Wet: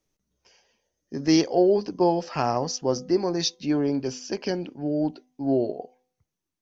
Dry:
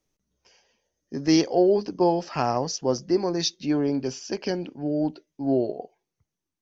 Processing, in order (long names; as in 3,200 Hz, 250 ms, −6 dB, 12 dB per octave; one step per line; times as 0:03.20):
hum removal 252 Hz, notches 5